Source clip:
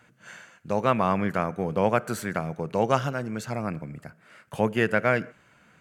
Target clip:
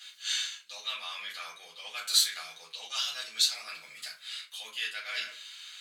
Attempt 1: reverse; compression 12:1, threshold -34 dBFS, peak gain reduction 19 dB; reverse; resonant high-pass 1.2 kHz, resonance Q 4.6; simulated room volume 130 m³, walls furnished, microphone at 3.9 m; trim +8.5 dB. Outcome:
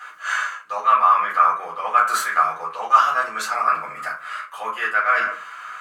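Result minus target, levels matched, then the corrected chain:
4 kHz band -19.5 dB
reverse; compression 12:1, threshold -34 dBFS, peak gain reduction 19 dB; reverse; resonant high-pass 3.8 kHz, resonance Q 4.6; simulated room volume 130 m³, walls furnished, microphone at 3.9 m; trim +8.5 dB

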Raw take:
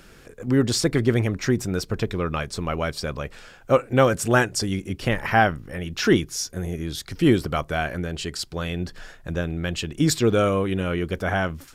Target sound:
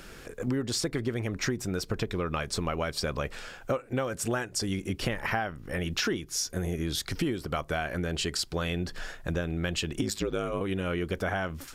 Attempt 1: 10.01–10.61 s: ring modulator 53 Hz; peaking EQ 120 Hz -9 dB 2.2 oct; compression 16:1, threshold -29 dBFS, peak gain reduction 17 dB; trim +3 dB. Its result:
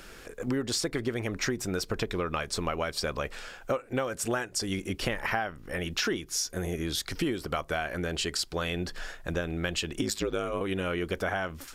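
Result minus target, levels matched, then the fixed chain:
125 Hz band -3.0 dB
10.01–10.61 s: ring modulator 53 Hz; peaking EQ 120 Hz -3 dB 2.2 oct; compression 16:1, threshold -29 dBFS, peak gain reduction 17.5 dB; trim +3 dB

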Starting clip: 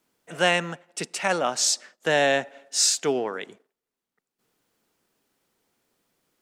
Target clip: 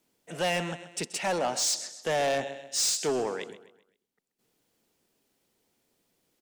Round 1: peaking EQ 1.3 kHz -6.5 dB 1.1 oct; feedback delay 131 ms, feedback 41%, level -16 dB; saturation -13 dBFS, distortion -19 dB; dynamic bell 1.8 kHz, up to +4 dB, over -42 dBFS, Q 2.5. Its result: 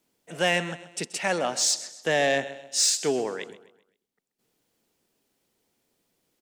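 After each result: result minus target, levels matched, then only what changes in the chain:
saturation: distortion -11 dB; 2 kHz band +3.0 dB
change: saturation -23 dBFS, distortion -9 dB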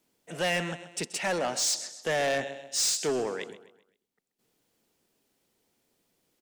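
2 kHz band +2.5 dB
change: dynamic bell 850 Hz, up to +4 dB, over -42 dBFS, Q 2.5

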